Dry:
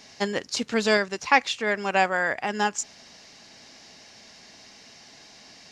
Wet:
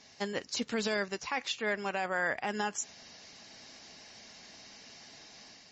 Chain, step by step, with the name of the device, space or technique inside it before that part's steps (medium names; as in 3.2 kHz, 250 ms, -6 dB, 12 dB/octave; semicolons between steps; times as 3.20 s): low-bitrate web radio (level rider gain up to 5 dB; peak limiter -12.5 dBFS, peak gain reduction 10.5 dB; trim -8 dB; MP3 32 kbps 32 kHz)